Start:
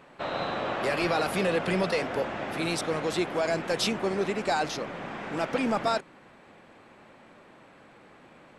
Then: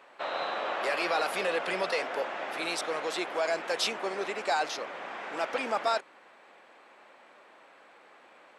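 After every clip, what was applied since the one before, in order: HPF 530 Hz 12 dB/oct; high shelf 8700 Hz -5 dB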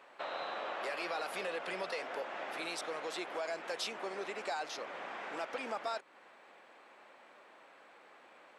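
compressor 2:1, threshold -37 dBFS, peak gain reduction 7.5 dB; gain -3 dB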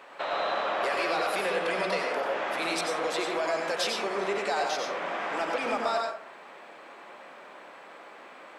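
plate-style reverb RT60 0.54 s, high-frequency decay 0.5×, pre-delay 80 ms, DRR 1 dB; in parallel at -7 dB: soft clip -34.5 dBFS, distortion -13 dB; on the sum: gain +5.5 dB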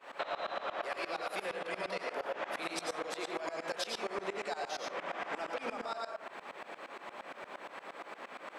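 compressor 6:1, threshold -37 dBFS, peak gain reduction 12.5 dB; tremolo saw up 8.6 Hz, depth 95%; gain +5 dB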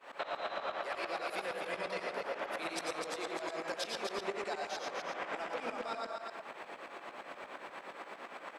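echo 0.251 s -5.5 dB; gain -1.5 dB

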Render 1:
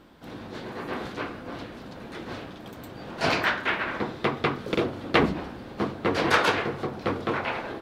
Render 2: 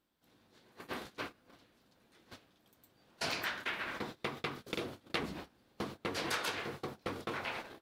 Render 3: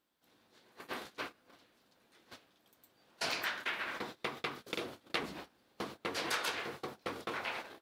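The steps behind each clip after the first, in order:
gate -32 dBFS, range -24 dB; pre-emphasis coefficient 0.8; compressor 2.5:1, threshold -48 dBFS, peak gain reduction 14 dB; gain +8.5 dB
low shelf 210 Hz -10.5 dB; gain +1 dB

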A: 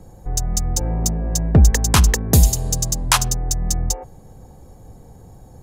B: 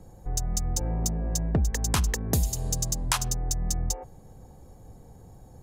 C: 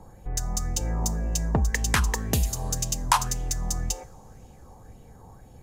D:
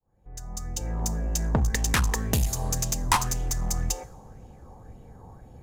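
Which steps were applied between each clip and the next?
compressor 4:1, threshold -16 dBFS, peak gain reduction 8.5 dB; gain -6 dB
two-slope reverb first 0.39 s, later 4 s, from -22 dB, DRR 15.5 dB; LFO bell 1.9 Hz 930–2900 Hz +13 dB
opening faded in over 1.51 s; one-sided clip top -26 dBFS; mismatched tape noise reduction decoder only; gain +2 dB

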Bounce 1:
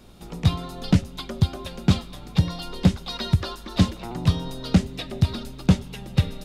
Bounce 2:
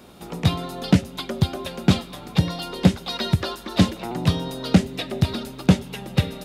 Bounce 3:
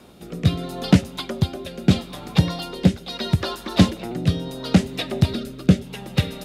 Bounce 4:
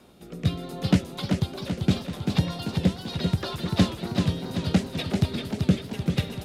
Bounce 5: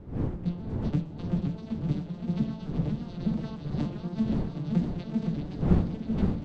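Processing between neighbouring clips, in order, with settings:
dynamic EQ 1100 Hz, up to -4 dB, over -44 dBFS, Q 1.9; HPF 250 Hz 6 dB/oct; bell 5400 Hz -4.5 dB 1.9 oct; gain +7 dB
rotary speaker horn 0.75 Hz; gain +2.5 dB
warbling echo 0.389 s, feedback 57%, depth 120 cents, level -5 dB; gain -6 dB
arpeggiated vocoder minor triad, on D3, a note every 0.296 s; wind noise 200 Hz -30 dBFS; warbling echo 0.517 s, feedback 64%, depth 136 cents, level -5 dB; gain -5 dB

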